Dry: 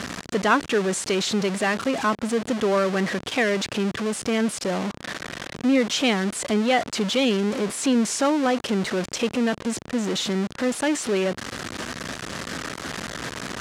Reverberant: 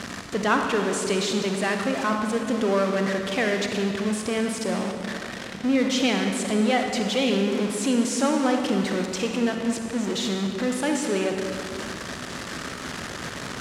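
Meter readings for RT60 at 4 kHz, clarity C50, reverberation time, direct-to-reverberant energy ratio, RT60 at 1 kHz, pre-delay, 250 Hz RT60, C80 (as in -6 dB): 1.7 s, 3.5 dB, 2.3 s, 3.0 dB, 2.2 s, 37 ms, 2.7 s, 5.0 dB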